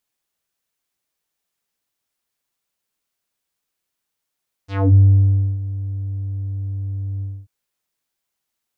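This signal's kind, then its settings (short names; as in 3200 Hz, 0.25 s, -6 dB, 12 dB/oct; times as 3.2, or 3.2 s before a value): synth note square G2 12 dB/oct, low-pass 150 Hz, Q 2.2, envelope 5.5 oct, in 0.24 s, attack 0.263 s, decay 0.64 s, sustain -16 dB, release 0.25 s, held 2.54 s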